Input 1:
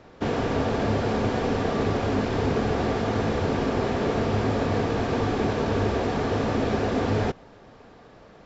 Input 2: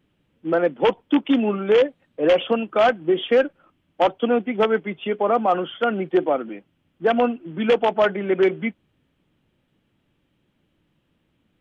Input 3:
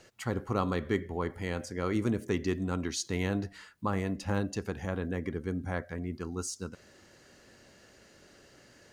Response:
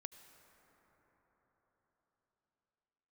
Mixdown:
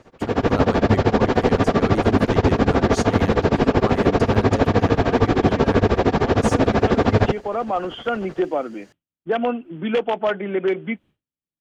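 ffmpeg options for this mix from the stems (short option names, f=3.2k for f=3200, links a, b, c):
-filter_complex "[0:a]lowpass=f=4k:p=1,tremolo=f=13:d=0.96,volume=3dB[a];[1:a]agate=range=-33dB:threshold=-42dB:ratio=3:detection=peak,acompressor=threshold=-26dB:ratio=1.5,adelay=2250,volume=-8dB[b];[2:a]volume=-6.5dB,asplit=2[c][d];[d]apad=whole_len=611166[e];[b][e]sidechaincompress=threshold=-48dB:ratio=8:attack=16:release=1250[f];[a][f][c]amix=inputs=3:normalize=0,dynaudnorm=f=240:g=3:m=9.5dB"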